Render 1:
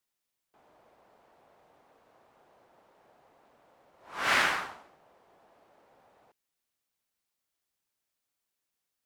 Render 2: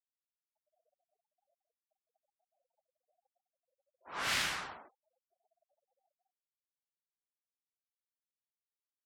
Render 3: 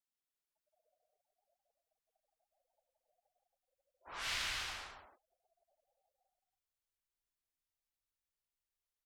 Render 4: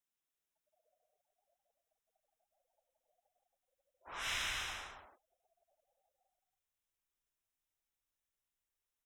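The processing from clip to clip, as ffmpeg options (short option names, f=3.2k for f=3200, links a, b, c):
-filter_complex "[0:a]agate=range=-10dB:threshold=-56dB:ratio=16:detection=peak,acrossover=split=180|3000[a][b][c];[b]acompressor=threshold=-37dB:ratio=6[d];[a][d][c]amix=inputs=3:normalize=0,afftfilt=real='re*gte(hypot(re,im),0.00158)':imag='im*gte(hypot(re,im),0.00158)':win_size=1024:overlap=0.75"
-filter_complex "[0:a]asubboost=boost=9.5:cutoff=63,acrossover=split=2100|6300[a][b][c];[a]acompressor=threshold=-47dB:ratio=4[d];[b]acompressor=threshold=-37dB:ratio=4[e];[c]acompressor=threshold=-53dB:ratio=4[f];[d][e][f]amix=inputs=3:normalize=0,aecho=1:1:169.1|274.1:0.562|0.447,volume=-1dB"
-af "asuperstop=centerf=4500:order=4:qfactor=4.2,volume=1dB"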